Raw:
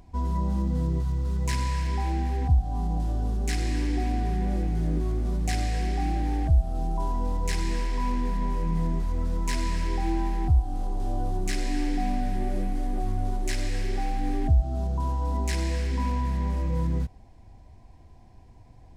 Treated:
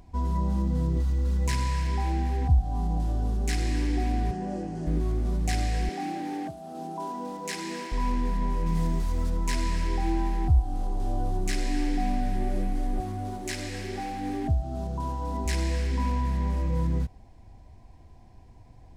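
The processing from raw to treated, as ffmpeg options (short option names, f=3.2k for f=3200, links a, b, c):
-filter_complex "[0:a]asettb=1/sr,asplit=3[a][b][c];[a]atrim=end=0.964[d];[b]atrim=start=0.96:end=1.48,asetpts=PTS-STARTPTS,afade=t=in:d=0.004:c=qsin,afade=t=out:st=0.516:d=0.004:c=qsin,aecho=1:1:3.6:0.7,atrim=end_sample=22932[e];[c]atrim=start=1.476[f];[d][e]acrossfade=d=0.004:c1=hsin:c2=qsin[g];[g][f]acrossfade=d=0.004:c1=qsin:c2=hsin,asettb=1/sr,asplit=3[h][i][j];[h]atrim=end=4.314[k];[i]atrim=start=4.31:end=4.87,asetpts=PTS-STARTPTS,afade=t=in:d=0.004:c=qsin,afade=t=out:st=0.556:d=0.004:c=qsin,highpass=170,equalizer=f=600:t=q:w=4:g=4,equalizer=f=1.3k:t=q:w=4:g=-4,equalizer=f=2.2k:t=q:w=4:g=-10,equalizer=f=3.7k:t=q:w=4:g=-10,lowpass=f=8.7k:w=0.5412,lowpass=f=8.7k:w=1.3066[l];[j]atrim=start=4.866[m];[k][l]acrossfade=d=0.004:c1=hsin:c2=qsin[n];[n][m]acrossfade=d=0.004:c1=qsin:c2=hsin,asettb=1/sr,asplit=3[o][p][q];[o]atrim=end=5.894[r];[p]atrim=start=5.89:end=7.92,asetpts=PTS-STARTPTS,afade=t=in:d=0.004:c=qsin,afade=t=out:st=2.026:d=0.004:c=qsin,highpass=f=200:w=0.5412,highpass=f=200:w=1.3066[s];[q]atrim=start=7.916[t];[r][s]acrossfade=d=0.004:c1=hsin:c2=qsin[u];[u][t]acrossfade=d=0.004:c1=qsin:c2=hsin,asettb=1/sr,asplit=3[v][w][x];[v]atrim=end=8.664[y];[w]atrim=start=8.66:end=9.3,asetpts=PTS-STARTPTS,afade=t=in:d=0.004:c=qsin,afade=t=out:st=0.636:d=0.004:c=qsin,highshelf=f=2.7k:g=8.5[z];[x]atrim=start=9.296[aa];[y][z]acrossfade=d=0.004:c1=hsin:c2=qsin[ab];[ab][aa]acrossfade=d=0.004:c1=qsin:c2=hsin,asettb=1/sr,asplit=3[ac][ad][ae];[ac]atrim=end=13.004[af];[ad]atrim=start=13:end=15.46,asetpts=PTS-STARTPTS,afade=t=in:d=0.004:c=qsin,afade=t=out:st=2.456:d=0.004:c=qsin,highpass=85[ag];[ae]atrim=start=15.456[ah];[af][ag]acrossfade=d=0.004:c1=hsin:c2=qsin[ai];[ai][ah]acrossfade=d=0.004:c1=qsin:c2=hsin"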